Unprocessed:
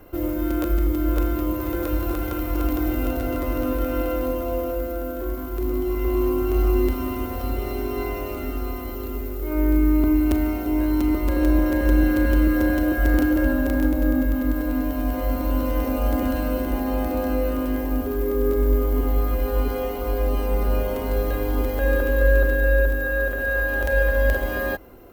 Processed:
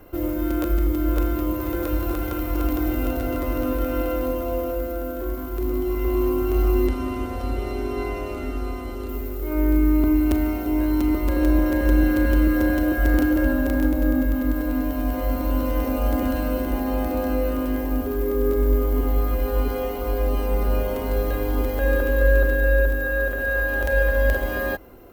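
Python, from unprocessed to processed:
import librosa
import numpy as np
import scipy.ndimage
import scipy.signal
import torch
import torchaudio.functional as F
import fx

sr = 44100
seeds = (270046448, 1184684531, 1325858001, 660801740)

y = fx.bessel_lowpass(x, sr, hz=9600.0, order=6, at=(6.87, 9.09))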